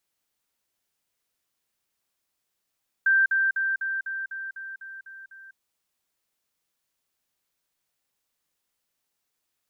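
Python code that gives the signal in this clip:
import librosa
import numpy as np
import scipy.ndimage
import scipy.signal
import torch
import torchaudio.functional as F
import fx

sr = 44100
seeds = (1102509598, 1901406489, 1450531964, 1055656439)

y = fx.level_ladder(sr, hz=1570.0, from_db=-16.5, step_db=-3.0, steps=10, dwell_s=0.2, gap_s=0.05)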